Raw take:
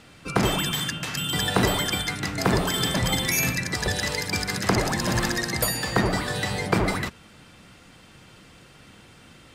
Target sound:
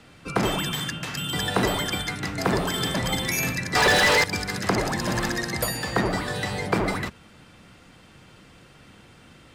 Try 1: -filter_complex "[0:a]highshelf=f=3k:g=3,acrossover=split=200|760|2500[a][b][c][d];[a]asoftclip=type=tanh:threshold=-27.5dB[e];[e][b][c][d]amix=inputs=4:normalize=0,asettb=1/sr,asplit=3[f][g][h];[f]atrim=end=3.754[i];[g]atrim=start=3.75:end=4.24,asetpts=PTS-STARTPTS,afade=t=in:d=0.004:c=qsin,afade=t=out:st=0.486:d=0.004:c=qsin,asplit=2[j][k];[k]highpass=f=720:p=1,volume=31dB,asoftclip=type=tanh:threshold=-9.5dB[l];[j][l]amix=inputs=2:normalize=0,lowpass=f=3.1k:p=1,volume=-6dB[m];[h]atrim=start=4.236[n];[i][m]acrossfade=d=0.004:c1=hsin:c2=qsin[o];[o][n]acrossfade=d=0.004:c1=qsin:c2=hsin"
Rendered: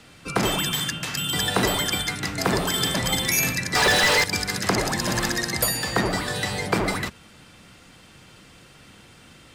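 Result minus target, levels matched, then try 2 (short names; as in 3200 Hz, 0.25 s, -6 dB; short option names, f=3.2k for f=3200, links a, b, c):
8000 Hz band +3.5 dB
-filter_complex "[0:a]highshelf=f=3k:g=-4,acrossover=split=200|760|2500[a][b][c][d];[a]asoftclip=type=tanh:threshold=-27.5dB[e];[e][b][c][d]amix=inputs=4:normalize=0,asettb=1/sr,asplit=3[f][g][h];[f]atrim=end=3.754[i];[g]atrim=start=3.75:end=4.24,asetpts=PTS-STARTPTS,afade=t=in:d=0.004:c=qsin,afade=t=out:st=0.486:d=0.004:c=qsin,asplit=2[j][k];[k]highpass=f=720:p=1,volume=31dB,asoftclip=type=tanh:threshold=-9.5dB[l];[j][l]amix=inputs=2:normalize=0,lowpass=f=3.1k:p=1,volume=-6dB[m];[h]atrim=start=4.236[n];[i][m]acrossfade=d=0.004:c1=hsin:c2=qsin[o];[o][n]acrossfade=d=0.004:c1=qsin:c2=hsin"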